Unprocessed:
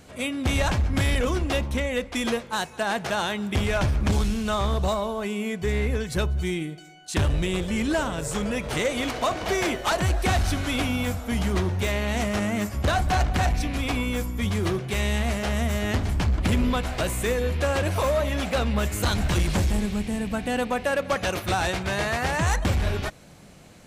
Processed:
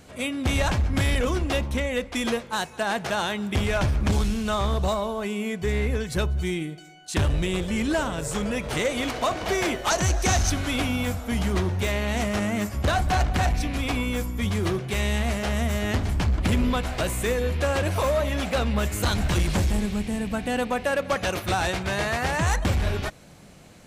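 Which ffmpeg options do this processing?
-filter_complex "[0:a]asettb=1/sr,asplit=3[a][b][c];[a]atrim=end=9.904[d];[b]atrim=start=9.9:end=10.5,asetpts=PTS-STARTPTS,afade=t=in:d=0.004:c=qsin,afade=t=out:st=0.596:d=0.004:c=qsin,equalizer=f=6.2k:t=o:w=0.41:g=14[e];[c]atrim=start=10.496[f];[d][e]acrossfade=d=0.004:c1=hsin:c2=qsin[g];[g][f]acrossfade=d=0.004:c1=qsin:c2=hsin"

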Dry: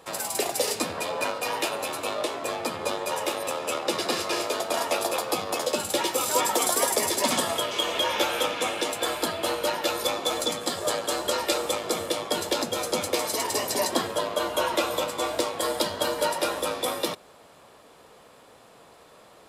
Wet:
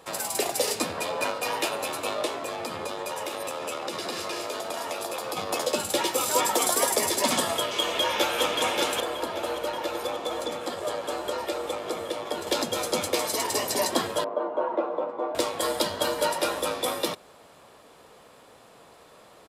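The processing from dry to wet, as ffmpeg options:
-filter_complex "[0:a]asettb=1/sr,asplit=3[a][b][c];[a]atrim=end=2.444[d];[b]atrim=start=2.44:end=5.37,asetpts=PTS-STARTPTS,afade=t=in:d=0.004:c=qsin,afade=t=out:st=2.926:d=0.004:c=qsin,acompressor=threshold=-28dB:ratio=6:attack=3.2:release=140:knee=1:detection=peak[e];[c]atrim=start=5.366[f];[d][e]acrossfade=d=0.004:c1=hsin:c2=qsin[g];[g][f]acrossfade=d=0.004:c1=qsin:c2=hsin,asplit=2[h][i];[i]afade=t=in:st=7.8:d=0.01,afade=t=out:st=8.42:d=0.01,aecho=0:1:580|1160|1740|2320|2900|3480|4060|4640|5220|5800|6380|6960:0.630957|0.473218|0.354914|0.266185|0.199639|0.149729|0.112297|0.0842226|0.063167|0.0473752|0.0355314|0.0266486[j];[h][j]amix=inputs=2:normalize=0,asettb=1/sr,asplit=3[k][l][m];[k]atrim=end=9.004[n];[l]atrim=start=9:end=12.47,asetpts=PTS-STARTPTS,afade=t=in:d=0.004:c=qsin,afade=t=out:st=3.466:d=0.004:c=qsin,acrossover=split=100|240|1100|3000[o][p][q][r][s];[o]acompressor=threshold=-55dB:ratio=3[t];[p]acompressor=threshold=-56dB:ratio=3[u];[q]acompressor=threshold=-28dB:ratio=3[v];[r]acompressor=threshold=-42dB:ratio=3[w];[s]acompressor=threshold=-45dB:ratio=3[x];[t][u][v][w][x]amix=inputs=5:normalize=0[y];[m]atrim=start=12.466[z];[n][y]acrossfade=d=0.004:c1=hsin:c2=qsin[aa];[aa][z]acrossfade=d=0.004:c1=qsin:c2=hsin,asettb=1/sr,asplit=3[ab][ac][ad];[ab]atrim=end=14.244[ae];[ac]atrim=start=14.24:end=15.35,asetpts=PTS-STARTPTS,afade=t=in:d=0.004:c=qsin,afade=t=out:st=1.106:d=0.004:c=qsin,asuperpass=centerf=520:order=4:qfactor=0.68[af];[ad]atrim=start=15.346[ag];[ae][af]acrossfade=d=0.004:c1=hsin:c2=qsin[ah];[ah][ag]acrossfade=d=0.004:c1=qsin:c2=hsin"

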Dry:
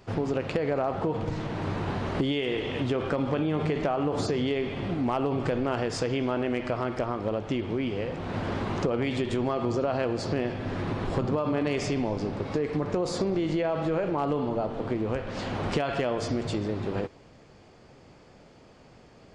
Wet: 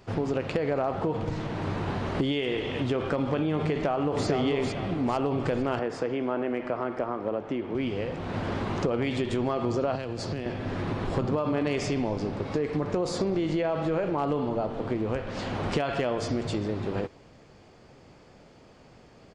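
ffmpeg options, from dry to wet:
-filter_complex "[0:a]asplit=2[a][b];[b]afade=t=in:st=3.71:d=0.01,afade=t=out:st=4.27:d=0.01,aecho=0:1:450|900|1350|1800|2250:0.595662|0.238265|0.0953059|0.0381224|0.015249[c];[a][c]amix=inputs=2:normalize=0,asettb=1/sr,asplit=3[d][e][f];[d]atrim=end=5.794[g];[e]atrim=start=5.79:end=7.75,asetpts=PTS-STARTPTS,afade=t=in:d=0.004:c=qsin,afade=t=out:st=1.956:d=0.004:c=qsin,acrossover=split=190 2200:gain=0.251 1 0.251[h][i][j];[h][i][j]amix=inputs=3:normalize=0[k];[f]atrim=start=7.746[l];[g][k]acrossfade=d=0.004:c1=hsin:c2=qsin[m];[m][l]acrossfade=d=0.004:c1=qsin:c2=hsin,asettb=1/sr,asplit=3[n][o][p];[n]atrim=end=9.954[q];[o]atrim=start=9.95:end=10.46,asetpts=PTS-STARTPTS,afade=t=in:d=0.004:c=qsin,afade=t=out:st=0.506:d=0.004:c=qsin,acrossover=split=160|3000[r][s][t];[s]acompressor=threshold=-32dB:ratio=4:attack=3.2:release=140:knee=2.83:detection=peak[u];[r][u][t]amix=inputs=3:normalize=0[v];[p]atrim=start=10.456[w];[q][v]acrossfade=d=0.004:c1=hsin:c2=qsin[x];[x][w]acrossfade=d=0.004:c1=qsin:c2=hsin"

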